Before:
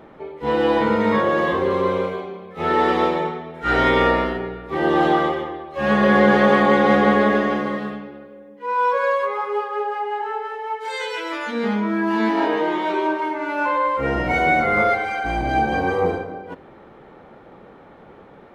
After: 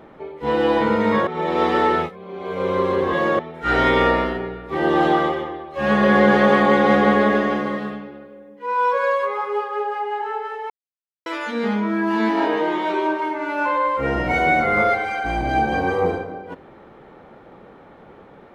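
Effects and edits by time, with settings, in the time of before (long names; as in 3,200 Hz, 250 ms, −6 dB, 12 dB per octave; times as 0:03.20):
0:01.27–0:03.39: reverse
0:10.70–0:11.26: silence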